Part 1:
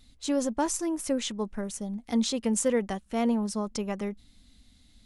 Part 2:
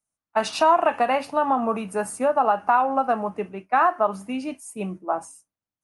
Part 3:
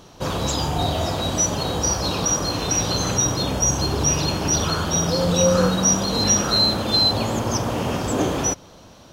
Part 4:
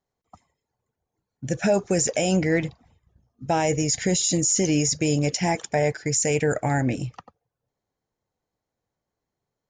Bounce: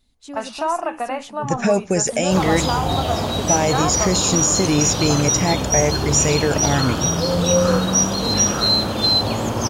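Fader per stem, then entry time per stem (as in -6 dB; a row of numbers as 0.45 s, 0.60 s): -7.5 dB, -4.5 dB, +1.0 dB, +3.0 dB; 0.00 s, 0.00 s, 2.10 s, 0.00 s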